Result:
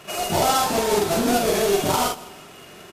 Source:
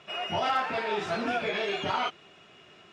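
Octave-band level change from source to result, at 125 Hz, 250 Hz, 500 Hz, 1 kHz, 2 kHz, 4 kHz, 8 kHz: +12.5, +12.5, +11.0, +7.5, +2.5, +7.0, +26.0 dB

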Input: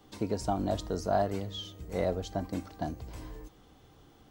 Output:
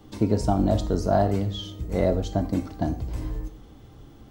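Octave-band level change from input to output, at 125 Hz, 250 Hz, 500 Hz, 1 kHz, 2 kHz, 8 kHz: +11.5, +10.0, +6.5, +5.0, +4.0, +3.5 dB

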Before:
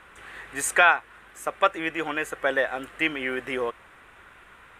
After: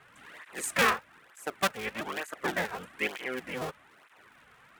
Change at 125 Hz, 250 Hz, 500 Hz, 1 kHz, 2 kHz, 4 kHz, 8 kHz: +3.0, -5.5, -7.5, -7.5, -7.5, -2.0, -5.0 dB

